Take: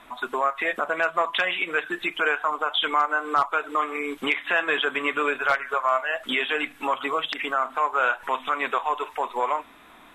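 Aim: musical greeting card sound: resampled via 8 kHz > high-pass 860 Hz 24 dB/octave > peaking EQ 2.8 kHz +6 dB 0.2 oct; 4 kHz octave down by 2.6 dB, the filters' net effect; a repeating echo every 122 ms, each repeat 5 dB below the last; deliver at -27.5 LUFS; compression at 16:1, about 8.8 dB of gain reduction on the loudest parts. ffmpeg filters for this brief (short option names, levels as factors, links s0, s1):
-af "equalizer=f=4000:t=o:g=-7,acompressor=threshold=0.0501:ratio=16,aecho=1:1:122|244|366|488|610|732|854:0.562|0.315|0.176|0.0988|0.0553|0.031|0.0173,aresample=8000,aresample=44100,highpass=f=860:w=0.5412,highpass=f=860:w=1.3066,equalizer=f=2800:t=o:w=0.2:g=6,volume=1.41"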